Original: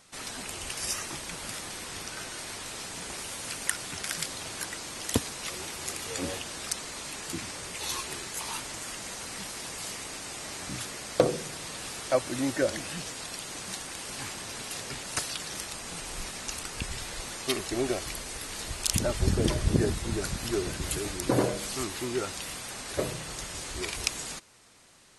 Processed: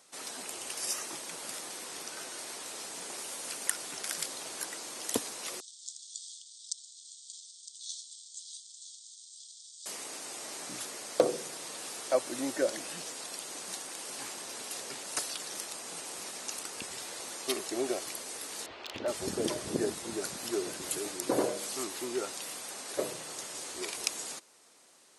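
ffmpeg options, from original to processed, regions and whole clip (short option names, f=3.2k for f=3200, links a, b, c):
-filter_complex "[0:a]asettb=1/sr,asplit=3[a][b][c];[a]atrim=end=5.604[d];[b]atrim=start=5.6:end=9.86,asetpts=PTS-STARTPTS,afade=t=in:d=0.004:c=qsin,afade=t=out:st=4.256:d=0.004:c=qsin,aeval=exprs='sgn(val(0))*max(abs(val(0))-0.01,0)':c=same,asuperpass=centerf=5500:order=20:qfactor=1,aecho=1:1:960:0.237,atrim=end_sample=187866[e];[c]atrim=start=9.856[f];[d][e]acrossfade=d=0.004:c1=hsin:c2=qsin[g];[g][f]acrossfade=d=0.004:c1=qsin:c2=hsin,asettb=1/sr,asplit=3[h][i][j];[h]atrim=end=18.664[k];[i]atrim=start=18.66:end=19.08,asetpts=PTS-STARTPTS,afade=t=in:d=0.004:c=qsin,afade=t=out:st=0.416:d=0.004:c=qsin,lowpass=f=3.5k:w=0.5412,lowpass=f=3.5k:w=1.3066,equalizer=f=170:w=3:g=-13.5,aeval=exprs='0.0891*(abs(mod(val(0)/0.0891+3,4)-2)-1)':c=same[l];[j]atrim=start=19.076[m];[k][l]acrossfade=d=0.004:c1=hsin:c2=qsin[n];[n][m]acrossfade=d=0.004:c1=qsin:c2=hsin,highpass=340,equalizer=f=2.1k:t=o:w=2.4:g=-6"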